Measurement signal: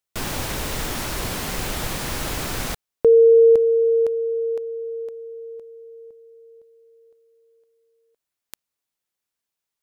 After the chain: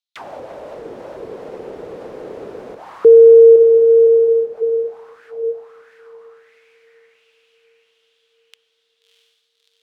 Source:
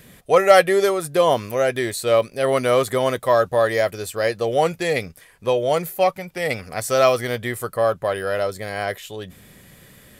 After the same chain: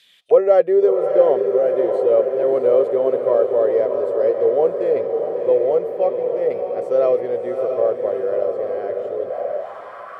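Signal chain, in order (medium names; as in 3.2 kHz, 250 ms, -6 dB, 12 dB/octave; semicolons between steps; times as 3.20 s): echo that smears into a reverb 655 ms, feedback 64%, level -5.5 dB; auto-wah 450–3900 Hz, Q 4, down, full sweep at -22 dBFS; trim +6.5 dB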